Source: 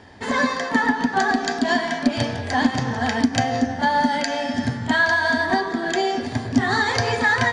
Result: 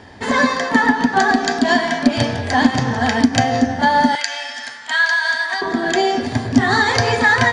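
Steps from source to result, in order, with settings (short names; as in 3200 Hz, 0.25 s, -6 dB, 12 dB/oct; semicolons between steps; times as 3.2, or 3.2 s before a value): 4.15–5.62 HPF 1400 Hz 12 dB/oct; gain +5 dB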